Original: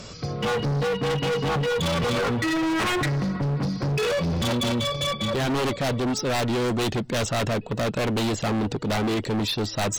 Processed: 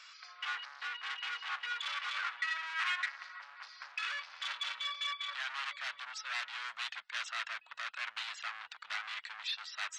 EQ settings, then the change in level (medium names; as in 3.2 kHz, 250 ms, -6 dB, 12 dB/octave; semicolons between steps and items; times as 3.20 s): inverse Chebyshev high-pass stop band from 410 Hz, stop band 60 dB; tape spacing loss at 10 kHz 26 dB; 0.0 dB